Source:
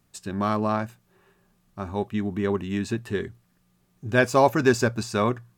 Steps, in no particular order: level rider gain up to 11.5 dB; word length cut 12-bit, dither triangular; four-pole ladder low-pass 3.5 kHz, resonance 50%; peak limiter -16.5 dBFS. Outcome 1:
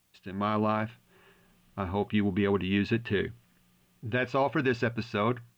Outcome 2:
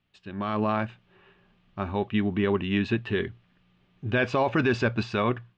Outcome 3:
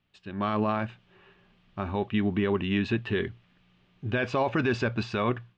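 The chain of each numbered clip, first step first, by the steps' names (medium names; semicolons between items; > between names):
level rider > four-pole ladder low-pass > peak limiter > word length cut; peak limiter > level rider > word length cut > four-pole ladder low-pass; word length cut > four-pole ladder low-pass > level rider > peak limiter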